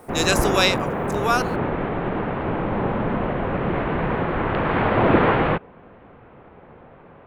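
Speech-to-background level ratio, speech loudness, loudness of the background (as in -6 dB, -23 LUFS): 0.5 dB, -22.0 LUFS, -22.5 LUFS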